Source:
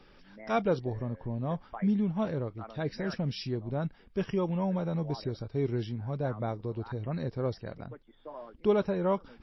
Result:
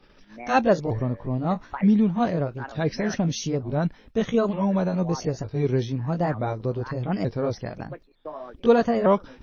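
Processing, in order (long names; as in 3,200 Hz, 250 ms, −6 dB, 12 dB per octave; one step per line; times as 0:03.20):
pitch shifter swept by a sawtooth +3.5 semitones, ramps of 906 ms
noise gate −56 dBFS, range −12 dB
level +9 dB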